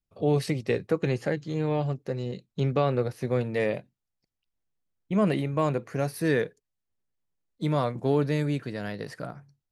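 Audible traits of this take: noise floor -85 dBFS; spectral tilt -6.0 dB/oct

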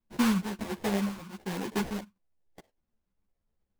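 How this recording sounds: phasing stages 2, 1.4 Hz, lowest notch 480–1300 Hz; aliases and images of a low sample rate 1300 Hz, jitter 20%; a shimmering, thickened sound

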